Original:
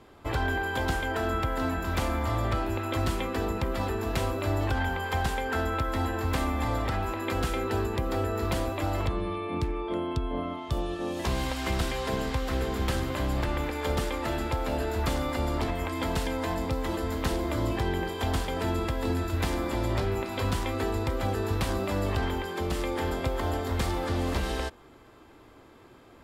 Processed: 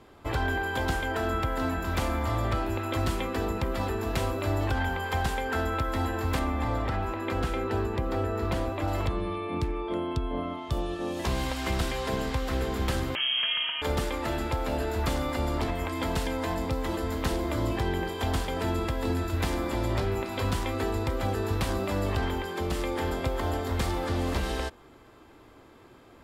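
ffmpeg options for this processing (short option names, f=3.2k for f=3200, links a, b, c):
-filter_complex "[0:a]asettb=1/sr,asplit=3[a][b][c];[a]atrim=end=6.394[d];[b]atrim=start=6.39:end=8.88,asetpts=PTS-STARTPTS,afade=t=in:d=0.004:c=qsin,afade=t=out:st=2.486:d=0.004:c=qsin,highshelf=f=4.3k:g=-9[e];[c]atrim=start=8.876[f];[d][e]acrossfade=d=0.004:c1=hsin:c2=qsin[g];[g][f]acrossfade=d=0.004:c1=qsin:c2=hsin,asettb=1/sr,asplit=3[h][i][j];[h]atrim=end=13.154[k];[i]atrim=start=13.15:end=13.82,asetpts=PTS-STARTPTS,afade=t=in:d=0.004:c=qsin,afade=t=out:st=0.666:d=0.004:c=qsin,lowpass=f=2.8k:t=q:w=0.5098,lowpass=f=2.8k:t=q:w=0.6013,lowpass=f=2.8k:t=q:w=0.9,lowpass=f=2.8k:t=q:w=2.563,afreqshift=-3300[l];[j]atrim=start=13.816[m];[k][l]acrossfade=d=0.004:c1=hsin:c2=qsin[n];[n][m]acrossfade=d=0.004:c1=qsin:c2=hsin"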